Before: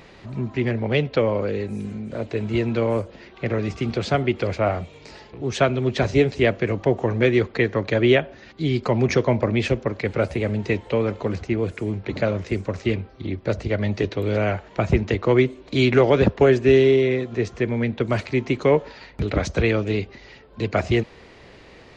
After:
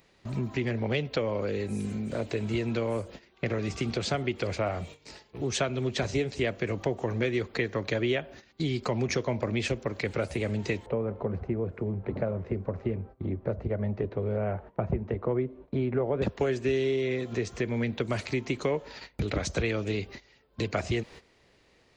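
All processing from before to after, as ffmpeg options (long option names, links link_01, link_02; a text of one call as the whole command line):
ffmpeg -i in.wav -filter_complex "[0:a]asettb=1/sr,asplit=3[link_01][link_02][link_03];[link_01]atrim=end=10.864[link_04];[link_02]atrim=start=10.86:end=16.22,asetpts=PTS-STARTPTS,afade=type=in:duration=0.004:curve=qsin,afade=type=out:start_time=5.356:duration=0.004:curve=qsin,lowpass=1000,bandreject=frequency=310:width=7.1[link_05];[link_03]atrim=start=16.216[link_06];[link_04][link_05]acrossfade=duration=0.004:curve1=hsin:curve2=qsin[link_07];[link_07][link_06]acrossfade=duration=0.004:curve1=qsin:curve2=hsin,aemphasis=mode=production:type=50fm,agate=range=-17dB:threshold=-39dB:ratio=16:detection=peak,acompressor=threshold=-28dB:ratio=3" out.wav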